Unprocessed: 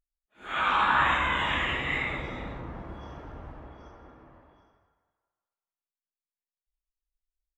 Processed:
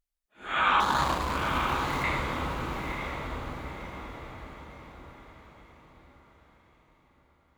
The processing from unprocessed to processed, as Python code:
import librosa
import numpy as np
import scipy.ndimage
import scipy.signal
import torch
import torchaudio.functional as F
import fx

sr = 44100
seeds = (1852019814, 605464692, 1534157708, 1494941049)

y = fx.median_filter(x, sr, points=25, at=(0.8, 2.04))
y = fx.echo_diffused(y, sr, ms=930, feedback_pct=41, wet_db=-5.5)
y = y * librosa.db_to_amplitude(2.0)